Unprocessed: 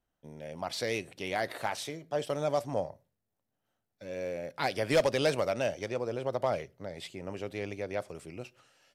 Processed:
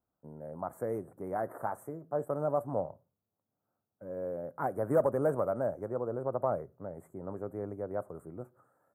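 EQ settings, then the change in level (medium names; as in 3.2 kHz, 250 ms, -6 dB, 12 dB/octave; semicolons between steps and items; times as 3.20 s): high-pass 73 Hz; elliptic band-stop 1.3–9.5 kHz, stop band 50 dB; peaking EQ 9.9 kHz -10.5 dB 0.43 oct; 0.0 dB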